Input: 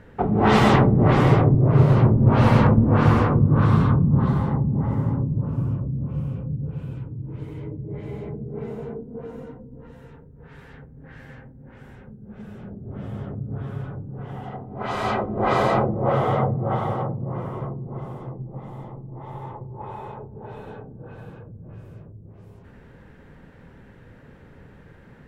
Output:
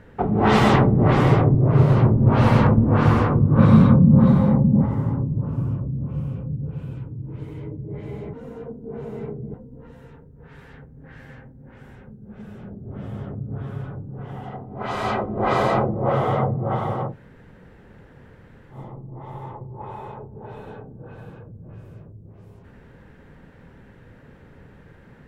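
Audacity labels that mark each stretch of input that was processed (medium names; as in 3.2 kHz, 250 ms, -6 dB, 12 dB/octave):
3.580000	4.860000	small resonant body resonances 210/530/2300/3800 Hz, height 12 dB
8.330000	9.540000	reverse
17.110000	18.740000	room tone, crossfade 0.10 s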